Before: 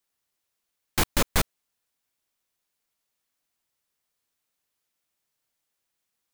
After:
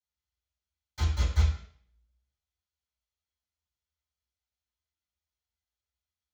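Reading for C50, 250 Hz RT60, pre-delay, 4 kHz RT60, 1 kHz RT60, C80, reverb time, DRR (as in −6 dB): 5.5 dB, 0.55 s, 3 ms, 0.55 s, 0.55 s, 8.5 dB, 0.60 s, −12.0 dB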